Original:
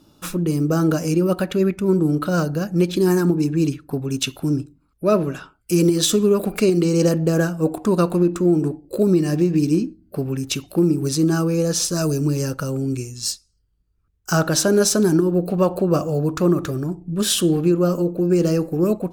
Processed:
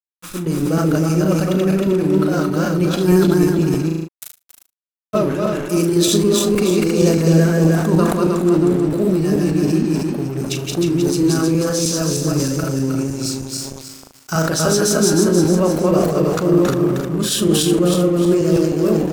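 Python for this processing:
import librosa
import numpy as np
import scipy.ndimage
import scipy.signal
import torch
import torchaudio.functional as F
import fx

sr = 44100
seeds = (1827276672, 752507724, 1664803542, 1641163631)

y = fx.reverse_delay_fb(x, sr, ms=156, feedback_pct=66, wet_db=-0.5)
y = fx.cheby2_highpass(y, sr, hz=2500.0, order=4, stop_db=80, at=(3.88, 5.13), fade=0.02)
y = np.sign(y) * np.maximum(np.abs(y) - 10.0 ** (-34.0 / 20.0), 0.0)
y = fx.wow_flutter(y, sr, seeds[0], rate_hz=2.1, depth_cents=23.0)
y = fx.room_flutter(y, sr, wall_m=6.4, rt60_s=0.21)
y = fx.sustainer(y, sr, db_per_s=43.0)
y = y * 10.0 ** (-1.5 / 20.0)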